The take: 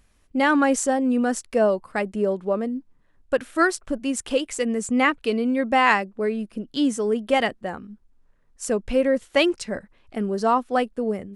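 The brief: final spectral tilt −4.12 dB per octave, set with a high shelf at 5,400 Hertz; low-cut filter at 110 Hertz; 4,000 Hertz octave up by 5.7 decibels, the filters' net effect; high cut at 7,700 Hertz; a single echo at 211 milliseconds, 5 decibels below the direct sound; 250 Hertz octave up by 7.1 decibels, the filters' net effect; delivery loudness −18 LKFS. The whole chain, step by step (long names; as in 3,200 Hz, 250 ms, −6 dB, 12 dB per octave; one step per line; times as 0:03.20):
high-pass filter 110 Hz
low-pass filter 7,700 Hz
parametric band 250 Hz +8 dB
parametric band 4,000 Hz +5.5 dB
high-shelf EQ 5,400 Hz +8 dB
single-tap delay 211 ms −5 dB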